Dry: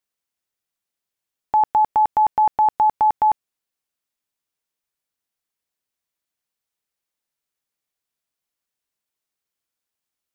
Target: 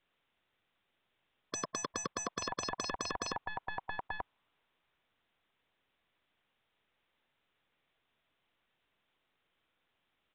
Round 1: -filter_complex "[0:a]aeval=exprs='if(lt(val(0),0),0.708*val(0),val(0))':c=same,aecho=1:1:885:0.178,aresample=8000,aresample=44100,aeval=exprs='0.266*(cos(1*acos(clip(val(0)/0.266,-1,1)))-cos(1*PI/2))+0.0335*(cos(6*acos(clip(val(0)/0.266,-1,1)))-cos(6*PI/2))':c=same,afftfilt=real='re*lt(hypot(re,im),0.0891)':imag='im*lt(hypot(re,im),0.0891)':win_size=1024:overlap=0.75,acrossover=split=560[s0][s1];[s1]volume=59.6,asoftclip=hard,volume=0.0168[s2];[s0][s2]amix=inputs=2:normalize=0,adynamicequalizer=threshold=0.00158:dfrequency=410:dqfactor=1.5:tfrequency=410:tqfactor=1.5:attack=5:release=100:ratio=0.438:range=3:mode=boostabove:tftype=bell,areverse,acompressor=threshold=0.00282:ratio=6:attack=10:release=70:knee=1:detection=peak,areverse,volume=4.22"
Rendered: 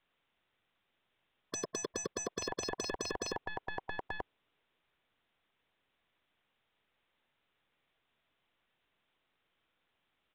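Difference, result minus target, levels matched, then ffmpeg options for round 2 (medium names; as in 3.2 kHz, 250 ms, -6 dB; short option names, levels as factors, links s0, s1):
overload inside the chain: distortion +16 dB; 500 Hz band +4.0 dB
-filter_complex "[0:a]aeval=exprs='if(lt(val(0),0),0.708*val(0),val(0))':c=same,aecho=1:1:885:0.178,aresample=8000,aresample=44100,aeval=exprs='0.266*(cos(1*acos(clip(val(0)/0.266,-1,1)))-cos(1*PI/2))+0.0335*(cos(6*acos(clip(val(0)/0.266,-1,1)))-cos(6*PI/2))':c=same,afftfilt=real='re*lt(hypot(re,im),0.0891)':imag='im*lt(hypot(re,im),0.0891)':win_size=1024:overlap=0.75,acrossover=split=560[s0][s1];[s1]volume=22.4,asoftclip=hard,volume=0.0447[s2];[s0][s2]amix=inputs=2:normalize=0,adynamicequalizer=threshold=0.00158:dfrequency=1000:dqfactor=1.5:tfrequency=1000:tqfactor=1.5:attack=5:release=100:ratio=0.438:range=3:mode=boostabove:tftype=bell,areverse,acompressor=threshold=0.00282:ratio=6:attack=10:release=70:knee=1:detection=peak,areverse,volume=4.22"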